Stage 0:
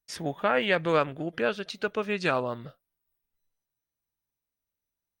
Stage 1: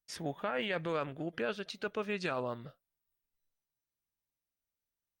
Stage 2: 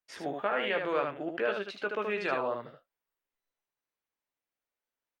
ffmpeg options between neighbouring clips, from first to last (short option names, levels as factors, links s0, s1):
-af "alimiter=limit=0.106:level=0:latency=1:release=14,volume=0.531"
-filter_complex "[0:a]acrossover=split=290 3100:gain=0.178 1 0.224[s0][s1][s2];[s0][s1][s2]amix=inputs=3:normalize=0,aecho=1:1:15|76:0.376|0.562,volume=1.68"